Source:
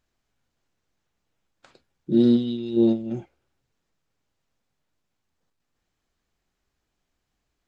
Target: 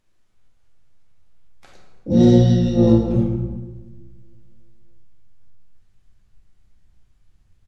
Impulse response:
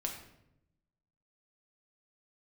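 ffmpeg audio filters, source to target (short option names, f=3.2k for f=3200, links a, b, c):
-filter_complex "[0:a]asubboost=boost=5.5:cutoff=150,asplit=3[a][b][c];[b]asetrate=22050,aresample=44100,atempo=2,volume=-9dB[d];[c]asetrate=66075,aresample=44100,atempo=0.66742,volume=-4dB[e];[a][d][e]amix=inputs=3:normalize=0[f];[1:a]atrim=start_sample=2205,asetrate=24696,aresample=44100[g];[f][g]afir=irnorm=-1:irlink=0"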